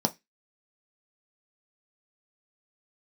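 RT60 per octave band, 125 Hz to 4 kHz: 0.25, 0.20, 0.15, 0.15, 0.25, 0.25 s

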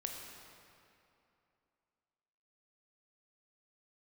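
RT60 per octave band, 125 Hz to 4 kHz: 2.7, 2.9, 2.8, 2.7, 2.4, 1.9 s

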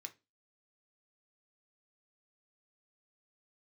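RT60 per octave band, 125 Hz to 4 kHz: 0.30, 0.35, 0.30, 0.20, 0.25, 0.25 s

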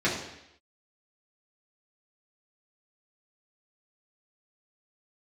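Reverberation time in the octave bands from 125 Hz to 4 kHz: 0.75, 0.80, 0.80, 0.80, 0.90, 0.85 s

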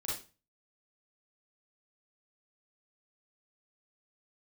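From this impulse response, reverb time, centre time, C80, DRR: 0.30 s, 47 ms, 9.5 dB, -6.5 dB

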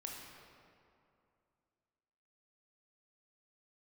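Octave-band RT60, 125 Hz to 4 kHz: 2.7, 2.8, 2.6, 2.5, 2.0, 1.5 s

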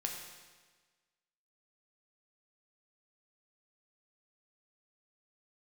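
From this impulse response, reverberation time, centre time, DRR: 1.4 s, 50 ms, 0.5 dB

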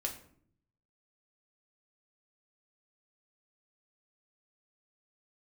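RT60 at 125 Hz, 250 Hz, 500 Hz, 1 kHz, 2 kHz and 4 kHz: 1.1, 0.90, 0.65, 0.55, 0.45, 0.35 s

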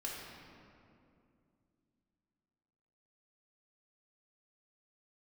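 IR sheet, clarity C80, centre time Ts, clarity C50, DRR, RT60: 1.5 dB, 0.114 s, -0.5 dB, -5.5 dB, 2.5 s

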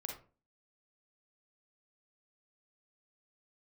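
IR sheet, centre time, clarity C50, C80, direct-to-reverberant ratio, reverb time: 28 ms, 4.0 dB, 11.5 dB, 1.0 dB, 0.40 s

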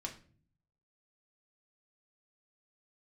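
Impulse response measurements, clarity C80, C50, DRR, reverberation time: 16.5 dB, 11.5 dB, 0.0 dB, 0.45 s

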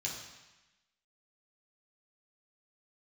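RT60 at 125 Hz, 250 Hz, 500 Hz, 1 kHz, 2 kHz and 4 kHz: 1.0, 1.1, 0.95, 1.1, 1.2, 1.1 s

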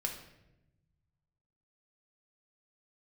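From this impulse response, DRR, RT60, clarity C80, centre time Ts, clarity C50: 1.5 dB, 0.90 s, 10.0 dB, 24 ms, 7.0 dB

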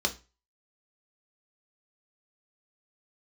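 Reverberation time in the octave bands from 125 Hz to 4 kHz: 0.35, 0.30, 0.30, 0.30, 0.30, 0.30 s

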